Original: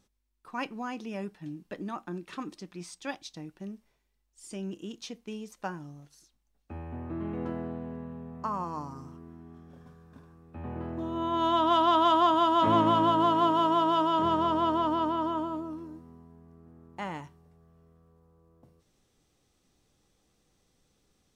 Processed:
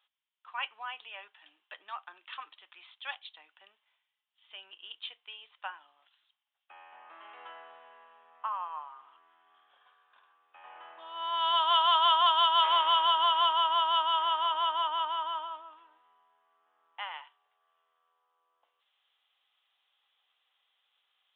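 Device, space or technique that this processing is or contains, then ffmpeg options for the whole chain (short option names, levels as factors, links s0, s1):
musical greeting card: -filter_complex "[0:a]aresample=8000,aresample=44100,highpass=f=870:w=0.5412,highpass=f=870:w=1.3066,equalizer=f=3100:t=o:w=0.39:g=10,asettb=1/sr,asplit=3[s0][s1][s2];[s0]atrim=end=12.264[s3];[s1]atrim=start=12.26:end=13.53,asetpts=PTS-STARTPTS,afade=t=in:d=0.004:c=qsin,afade=t=out:st=1.266:d=0.004:c=qsin,highshelf=f=4600:g=8.5[s4];[s2]atrim=start=13.526[s5];[s3][s4]acrossfade=d=0.004:c1=hsin:c2=qsin[s6];[s6][s5]acrossfade=d=0.004:c1=qsin:c2=hsin"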